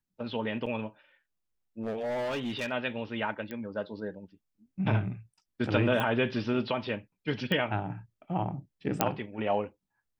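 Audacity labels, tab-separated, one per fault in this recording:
0.660000	0.660000	dropout 4.9 ms
1.830000	2.720000	clipped -29 dBFS
3.510000	3.510000	pop -25 dBFS
6.000000	6.000000	pop -18 dBFS
7.520000	7.520000	pop -18 dBFS
9.010000	9.010000	pop -7 dBFS

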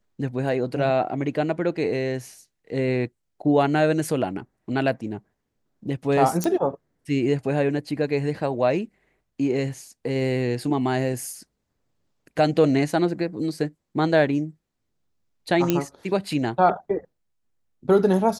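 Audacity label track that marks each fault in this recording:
6.440000	6.440000	pop -10 dBFS
15.700000	15.700000	pop -6 dBFS

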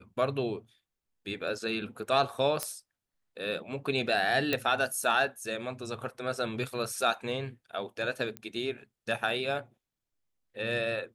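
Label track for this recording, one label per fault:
2.630000	2.630000	pop -14 dBFS
4.530000	4.530000	pop -13 dBFS
8.370000	8.370000	pop -22 dBFS

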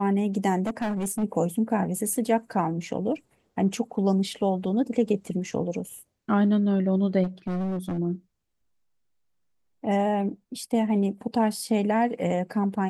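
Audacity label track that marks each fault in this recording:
0.660000	1.240000	clipped -24 dBFS
7.230000	7.990000	clipped -26 dBFS

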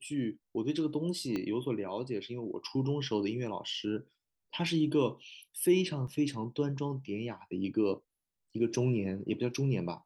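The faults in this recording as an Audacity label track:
1.360000	1.360000	pop -22 dBFS
6.070000	6.070000	dropout 4.8 ms

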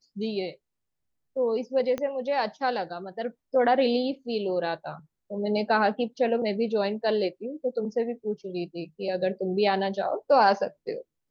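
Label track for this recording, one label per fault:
1.980000	1.980000	pop -18 dBFS

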